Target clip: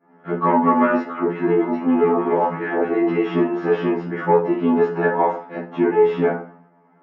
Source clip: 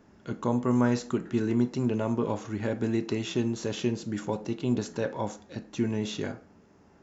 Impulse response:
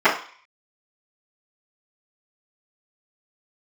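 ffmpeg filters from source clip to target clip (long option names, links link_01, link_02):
-filter_complex "[0:a]highpass=130,agate=range=-33dB:threshold=-50dB:ratio=3:detection=peak,lowpass=1600,asoftclip=type=tanh:threshold=-19dB,asettb=1/sr,asplit=3[link_01][link_02][link_03];[link_01]atrim=end=0.984[link_04];[link_02]atrim=start=0.98:end=3.15,asetpts=PTS-STARTPTS,afade=type=in:duration=0.004:curve=qsin,afade=type=out:start_time=2.166:duration=0.004:curve=qsin,acrossover=split=200|1200[link_05][link_06][link_07];[link_06]adelay=80[link_08];[link_05]adelay=280[link_09];[link_09][link_08][link_07]amix=inputs=3:normalize=0,atrim=end_sample=95697[link_10];[link_03]atrim=start=3.146[link_11];[link_04][link_10]acrossfade=duration=0.004:curve1=hsin:curve2=qsin[link_12];[link_12][link_11]acrossfade=duration=0.004:curve1=qsin:curve2=hsin[link_13];[1:a]atrim=start_sample=2205,atrim=end_sample=3528[link_14];[link_13][link_14]afir=irnorm=-1:irlink=0,afftfilt=real='re*2*eq(mod(b,4),0)':imag='im*2*eq(mod(b,4),0)':win_size=2048:overlap=0.75,volume=-2.5dB"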